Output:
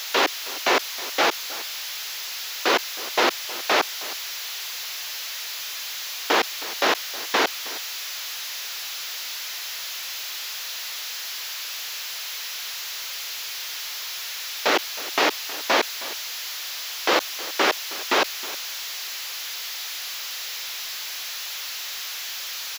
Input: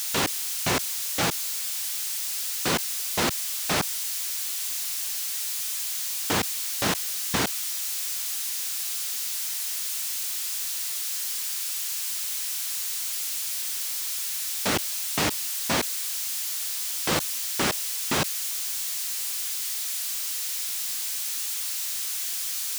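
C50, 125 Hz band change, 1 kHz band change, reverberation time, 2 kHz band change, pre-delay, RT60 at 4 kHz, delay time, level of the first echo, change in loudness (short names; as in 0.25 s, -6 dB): none, under -15 dB, +7.5 dB, none, +7.0 dB, none, none, 0.316 s, -17.5 dB, 0.0 dB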